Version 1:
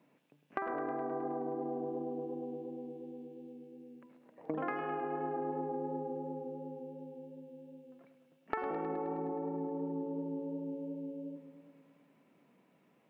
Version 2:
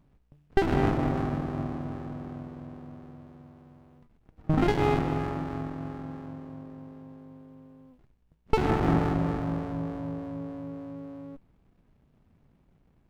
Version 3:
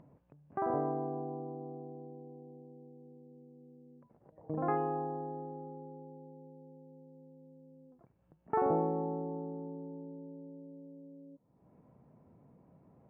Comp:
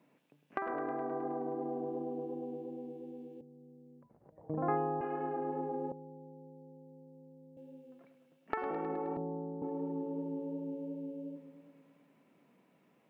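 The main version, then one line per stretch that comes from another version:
1
3.41–5.01 s: from 3
5.92–7.57 s: from 3
9.17–9.62 s: from 3
not used: 2

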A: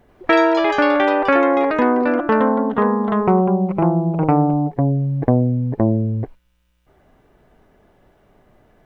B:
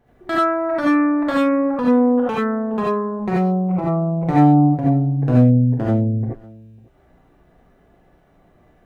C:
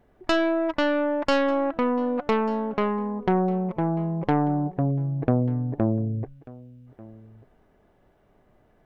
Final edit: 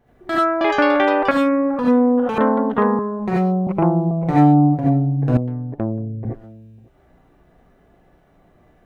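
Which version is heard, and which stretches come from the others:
B
0.61–1.31 s: from A
2.38–2.99 s: from A
3.67–4.11 s: from A
5.37–6.25 s: from C

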